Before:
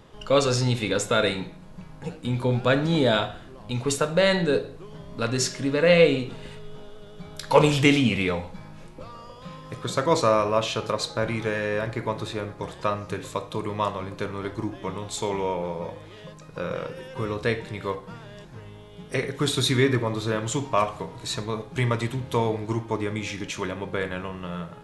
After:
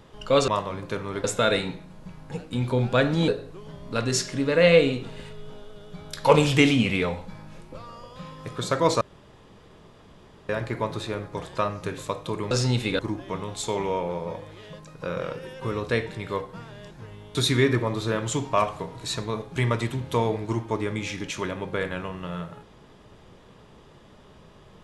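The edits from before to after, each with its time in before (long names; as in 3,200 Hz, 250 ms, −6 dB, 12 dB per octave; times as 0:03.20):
0:00.48–0:00.96: swap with 0:13.77–0:14.53
0:03.00–0:04.54: remove
0:10.27–0:11.75: fill with room tone
0:18.89–0:19.55: remove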